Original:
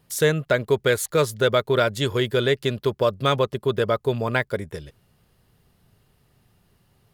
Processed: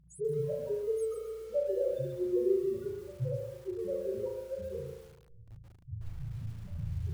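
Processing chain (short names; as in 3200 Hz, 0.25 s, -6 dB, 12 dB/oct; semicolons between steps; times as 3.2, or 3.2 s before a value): repeated pitch sweeps -2 st, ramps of 0.237 s; recorder AGC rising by 20 dB/s; reverb removal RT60 0.69 s; bell 620 Hz +8.5 dB 0.97 oct; compressor 12:1, threshold -24 dBFS, peak gain reduction 14.5 dB; step gate "xxxxx.xx..xxxx." 102 bpm -24 dB; loudest bins only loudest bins 1; phaser 0.29 Hz, delay 4 ms, feedback 42%; buzz 60 Hz, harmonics 3, -65 dBFS -6 dB/oct; spring tank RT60 1 s, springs 36 ms, chirp 60 ms, DRR 0 dB; lo-fi delay 0.133 s, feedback 35%, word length 9-bit, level -6 dB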